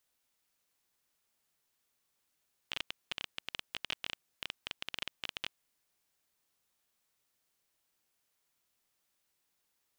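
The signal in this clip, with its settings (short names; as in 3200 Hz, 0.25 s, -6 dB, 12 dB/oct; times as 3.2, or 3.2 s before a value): random clicks 15/s -18.5 dBFS 3.08 s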